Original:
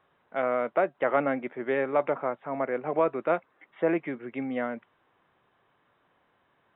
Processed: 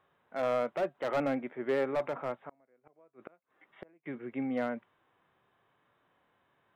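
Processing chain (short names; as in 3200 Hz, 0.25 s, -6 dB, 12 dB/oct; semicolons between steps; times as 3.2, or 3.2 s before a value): 2.39–4.06 flipped gate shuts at -22 dBFS, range -36 dB; hard clip -21.5 dBFS, distortion -12 dB; harmonic-percussive split percussive -7 dB; gain -1 dB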